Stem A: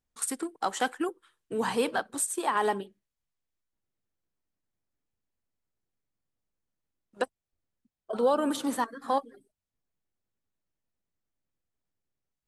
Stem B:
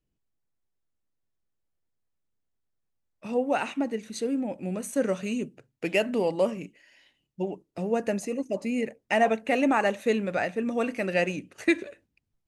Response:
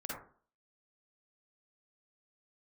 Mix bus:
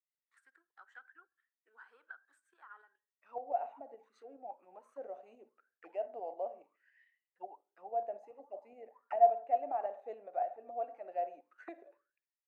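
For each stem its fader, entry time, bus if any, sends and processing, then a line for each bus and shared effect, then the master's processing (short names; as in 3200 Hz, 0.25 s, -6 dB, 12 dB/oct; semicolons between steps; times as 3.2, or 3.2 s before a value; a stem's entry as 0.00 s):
-5.5 dB, 0.15 s, send -23.5 dB, compressor 1.5:1, threshold -36 dBFS, peak gain reduction 6 dB; auto duck -24 dB, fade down 0.45 s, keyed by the second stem
+0.5 dB, 0.00 s, send -12 dB, dry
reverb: on, RT60 0.45 s, pre-delay 42 ms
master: auto-wah 710–2000 Hz, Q 15, down, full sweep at -23.5 dBFS; resonant low shelf 230 Hz -11.5 dB, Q 1.5; tremolo saw up 7.1 Hz, depth 45%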